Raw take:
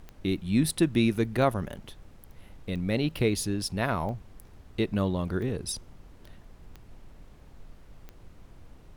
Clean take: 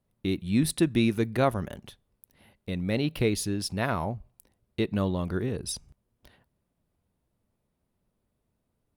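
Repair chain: de-click; noise print and reduce 27 dB

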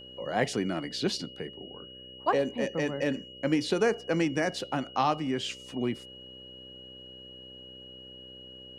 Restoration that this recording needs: de-hum 63.6 Hz, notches 9; band-stop 2.9 kHz, Q 30

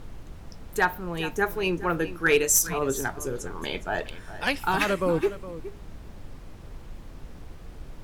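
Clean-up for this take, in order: clip repair -11.5 dBFS; noise print and reduce 29 dB; inverse comb 414 ms -14.5 dB

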